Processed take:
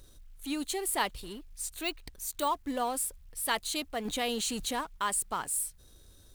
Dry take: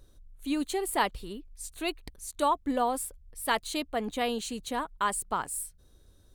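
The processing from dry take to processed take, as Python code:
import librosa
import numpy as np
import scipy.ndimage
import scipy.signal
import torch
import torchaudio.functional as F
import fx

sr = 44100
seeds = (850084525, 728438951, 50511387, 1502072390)

y = fx.law_mismatch(x, sr, coded='mu')
y = fx.resample_bad(y, sr, factor=2, down='filtered', up='hold', at=(1.7, 2.48))
y = fx.high_shelf(y, sr, hz=2100.0, db=8.0)
y = fx.env_flatten(y, sr, amount_pct=50, at=(4.05, 4.81))
y = F.gain(torch.from_numpy(y), -6.0).numpy()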